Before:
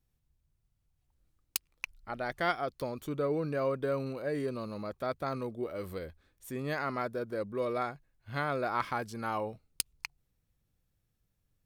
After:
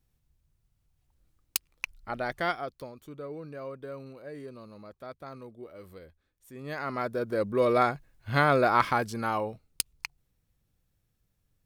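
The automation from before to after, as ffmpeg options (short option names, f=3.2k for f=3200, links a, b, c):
-af "volume=22.5dB,afade=t=out:st=2.18:d=0.75:silence=0.237137,afade=t=in:st=6.53:d=0.44:silence=0.298538,afade=t=in:st=6.97:d=0.87:silence=0.398107,afade=t=out:st=8.54:d=0.94:silence=0.446684"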